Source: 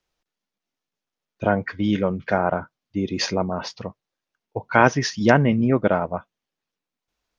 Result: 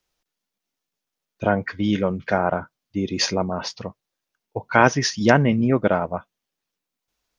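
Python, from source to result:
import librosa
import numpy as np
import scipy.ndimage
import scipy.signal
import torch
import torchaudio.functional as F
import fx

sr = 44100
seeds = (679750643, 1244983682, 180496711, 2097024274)

y = fx.high_shelf(x, sr, hz=5600.0, db=8.0)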